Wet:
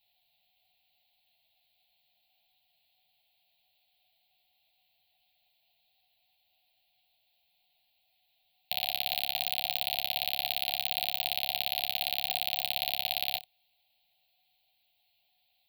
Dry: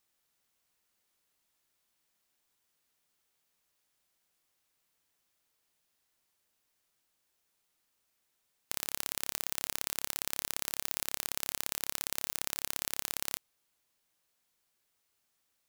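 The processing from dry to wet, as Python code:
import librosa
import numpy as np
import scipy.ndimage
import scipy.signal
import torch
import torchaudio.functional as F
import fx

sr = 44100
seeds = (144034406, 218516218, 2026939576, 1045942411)

p1 = fx.curve_eq(x, sr, hz=(150.0, 430.0, 740.0, 1200.0, 2500.0, 4200.0, 6000.0, 9800.0, 14000.0), db=(0, -19, 15, -28, 9, 12, -24, -12, 3))
y = p1 + fx.room_early_taps(p1, sr, ms=(12, 67), db=(-4.0, -15.0), dry=0)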